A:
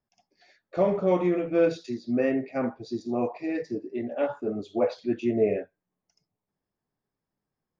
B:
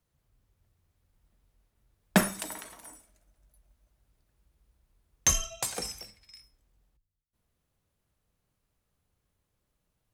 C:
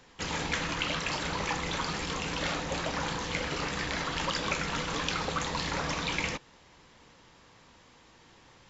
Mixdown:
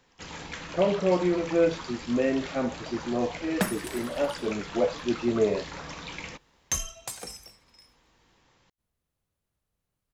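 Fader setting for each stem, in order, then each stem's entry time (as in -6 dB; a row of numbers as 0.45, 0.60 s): -0.5, -4.5, -7.5 dB; 0.00, 1.45, 0.00 s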